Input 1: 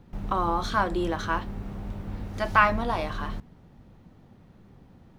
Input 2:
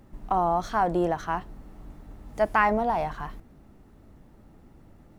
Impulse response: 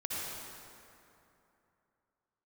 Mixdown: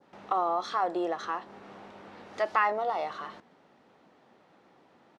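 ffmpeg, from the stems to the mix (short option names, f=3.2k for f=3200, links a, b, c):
-filter_complex "[0:a]acompressor=threshold=-30dB:ratio=6,volume=1dB[a];[1:a]adelay=2.4,volume=-2.5dB[b];[a][b]amix=inputs=2:normalize=0,adynamicequalizer=threshold=0.00631:dfrequency=2600:dqfactor=0.79:tfrequency=2600:tqfactor=0.79:attack=5:release=100:ratio=0.375:range=2.5:mode=cutabove:tftype=bell,highpass=480,lowpass=5.4k"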